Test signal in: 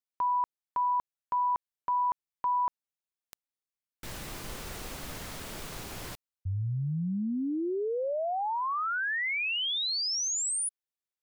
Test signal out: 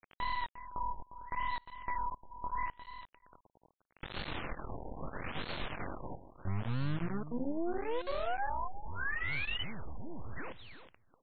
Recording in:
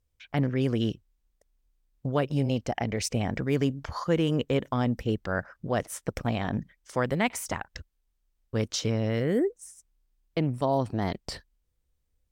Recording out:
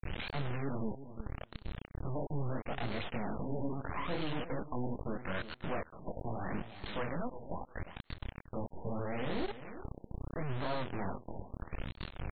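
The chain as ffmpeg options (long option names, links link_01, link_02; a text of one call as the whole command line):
ffmpeg -i in.wav -af "aeval=exprs='val(0)+0.5*0.01*sgn(val(0))':channel_layout=same,bandreject=frequency=420:width=12,acompressor=threshold=-45dB:ratio=2:attack=6.5:release=191:knee=1:detection=rms,flanger=delay=19.5:depth=5.4:speed=2.6,aresample=16000,acrusher=bits=5:dc=4:mix=0:aa=0.000001,aresample=44100,asoftclip=type=tanh:threshold=-33.5dB,aecho=1:1:353|706:0.237|0.0356,afftfilt=real='re*lt(b*sr/1024,970*pow(4500/970,0.5+0.5*sin(2*PI*0.77*pts/sr)))':imag='im*lt(b*sr/1024,970*pow(4500/970,0.5+0.5*sin(2*PI*0.77*pts/sr)))':win_size=1024:overlap=0.75,volume=10.5dB" out.wav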